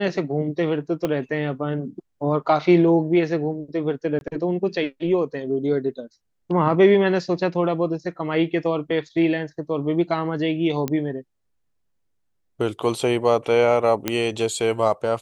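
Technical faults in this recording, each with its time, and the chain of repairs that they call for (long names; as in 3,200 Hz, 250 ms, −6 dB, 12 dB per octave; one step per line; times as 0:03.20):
0:01.05: click −11 dBFS
0:04.19–0:04.21: drop-out 21 ms
0:10.88: click −11 dBFS
0:14.08: click −6 dBFS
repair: click removal
repair the gap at 0:04.19, 21 ms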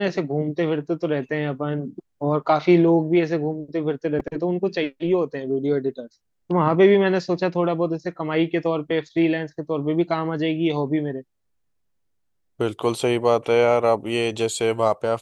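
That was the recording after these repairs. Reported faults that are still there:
0:01.05: click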